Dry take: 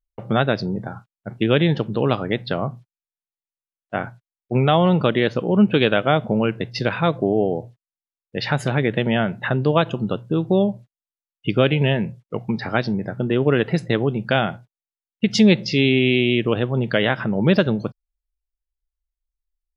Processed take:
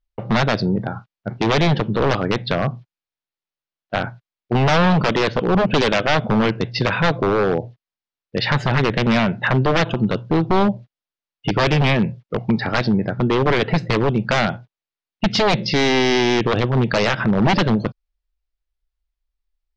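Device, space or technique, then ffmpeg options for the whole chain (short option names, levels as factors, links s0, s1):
synthesiser wavefolder: -af "aeval=exprs='0.168*(abs(mod(val(0)/0.168+3,4)-2)-1)':c=same,lowpass=f=5100:w=0.5412,lowpass=f=5100:w=1.3066,volume=1.88"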